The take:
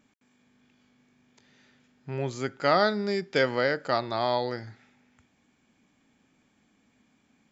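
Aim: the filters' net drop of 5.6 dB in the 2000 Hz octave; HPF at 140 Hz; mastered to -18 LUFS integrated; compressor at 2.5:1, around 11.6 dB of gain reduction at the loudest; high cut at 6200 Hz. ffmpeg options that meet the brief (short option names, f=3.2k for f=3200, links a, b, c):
-af "highpass=140,lowpass=6.2k,equalizer=f=2k:t=o:g=-7.5,acompressor=threshold=-37dB:ratio=2.5,volume=20dB"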